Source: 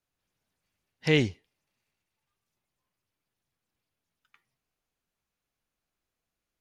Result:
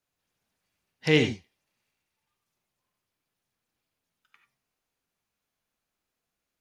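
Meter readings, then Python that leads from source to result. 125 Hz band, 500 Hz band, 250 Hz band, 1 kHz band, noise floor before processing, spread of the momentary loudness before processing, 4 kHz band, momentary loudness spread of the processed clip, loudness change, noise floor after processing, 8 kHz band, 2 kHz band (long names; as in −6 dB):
0.0 dB, +2.5 dB, +2.0 dB, +3.0 dB, below −85 dBFS, 9 LU, +2.5 dB, 14 LU, +2.0 dB, −85 dBFS, +2.5 dB, +2.5 dB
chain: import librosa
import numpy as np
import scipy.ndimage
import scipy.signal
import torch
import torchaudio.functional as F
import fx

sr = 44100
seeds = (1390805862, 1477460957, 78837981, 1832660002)

y = fx.low_shelf(x, sr, hz=94.0, db=-7.5)
y = fx.rev_gated(y, sr, seeds[0], gate_ms=110, shape='rising', drr_db=6.0)
y = F.gain(torch.from_numpy(y), 1.5).numpy()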